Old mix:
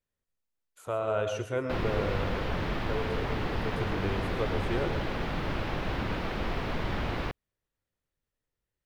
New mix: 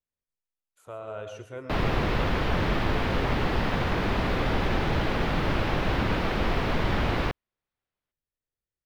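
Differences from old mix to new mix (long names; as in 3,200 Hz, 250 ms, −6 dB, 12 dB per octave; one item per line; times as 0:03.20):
speech −8.0 dB
background +6.0 dB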